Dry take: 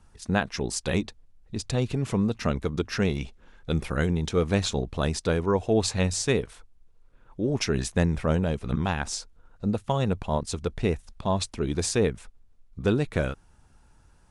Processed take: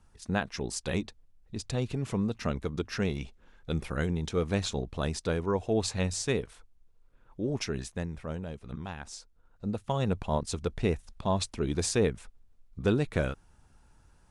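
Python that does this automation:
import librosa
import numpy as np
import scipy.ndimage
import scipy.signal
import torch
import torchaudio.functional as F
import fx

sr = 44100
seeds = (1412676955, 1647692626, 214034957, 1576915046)

y = fx.gain(x, sr, db=fx.line((7.52, -5.0), (8.07, -12.5), (9.05, -12.5), (10.14, -2.5)))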